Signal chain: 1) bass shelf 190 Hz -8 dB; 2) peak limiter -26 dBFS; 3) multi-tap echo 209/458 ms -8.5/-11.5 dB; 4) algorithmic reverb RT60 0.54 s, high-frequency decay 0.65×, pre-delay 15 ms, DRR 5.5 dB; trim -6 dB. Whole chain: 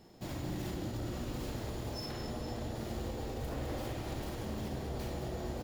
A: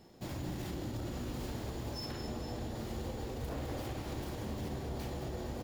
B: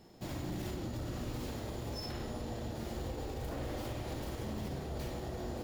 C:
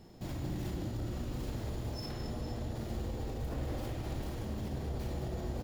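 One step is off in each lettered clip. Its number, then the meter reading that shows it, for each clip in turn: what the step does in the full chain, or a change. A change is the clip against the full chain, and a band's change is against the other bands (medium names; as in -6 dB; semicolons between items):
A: 4, echo-to-direct -2.5 dB to -6.5 dB; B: 3, echo-to-direct -2.5 dB to -5.5 dB; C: 1, 125 Hz band +5.0 dB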